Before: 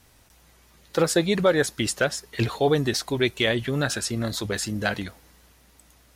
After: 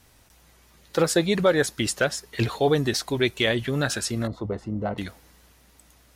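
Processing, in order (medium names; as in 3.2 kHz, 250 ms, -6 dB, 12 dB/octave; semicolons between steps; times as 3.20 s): 4.27–4.98 s: Savitzky-Golay filter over 65 samples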